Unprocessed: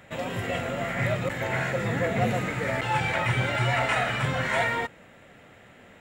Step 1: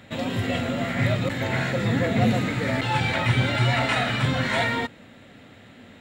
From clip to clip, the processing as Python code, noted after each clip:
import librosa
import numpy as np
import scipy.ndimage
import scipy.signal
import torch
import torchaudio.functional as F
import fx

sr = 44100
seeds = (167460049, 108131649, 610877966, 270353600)

y = fx.graphic_eq_15(x, sr, hz=(100, 250, 4000), db=(7, 10, 10))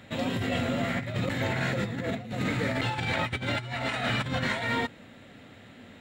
y = fx.over_compress(x, sr, threshold_db=-25.0, ratio=-0.5)
y = F.gain(torch.from_numpy(y), -4.0).numpy()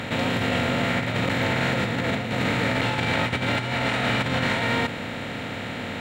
y = fx.bin_compress(x, sr, power=0.4)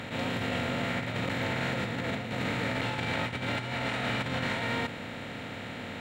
y = fx.attack_slew(x, sr, db_per_s=150.0)
y = F.gain(torch.from_numpy(y), -7.5).numpy()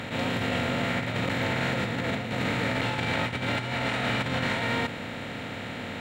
y = fx.dmg_crackle(x, sr, seeds[0], per_s=48.0, level_db=-58.0)
y = F.gain(torch.from_numpy(y), 3.5).numpy()